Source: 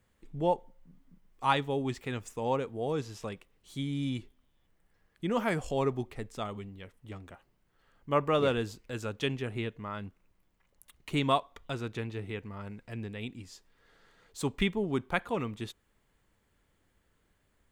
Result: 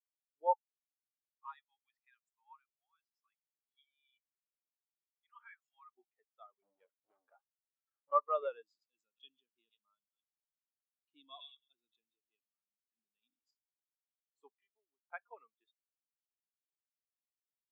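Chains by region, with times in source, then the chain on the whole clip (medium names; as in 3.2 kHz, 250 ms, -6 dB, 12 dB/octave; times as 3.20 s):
0.53–5.94 s: high-pass 1.1 kHz 24 dB/octave + hard clipper -28.5 dBFS
6.62–8.11 s: low-pass 1.4 kHz 6 dB/octave + bass shelf 220 Hz +3.5 dB + waveshaping leveller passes 5
8.62–13.51 s: high-order bell 980 Hz -12.5 dB 2.8 oct + feedback echo behind a high-pass 109 ms, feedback 56%, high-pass 2.3 kHz, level -20 dB + decay stretcher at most 22 dB/s
14.54–15.12 s: compression 4:1, threshold -41 dBFS + loudspeaker Doppler distortion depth 0.2 ms
whole clip: high-pass 730 Hz 12 dB/octave; de-esser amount 90%; spectral contrast expander 2.5:1; trim -3 dB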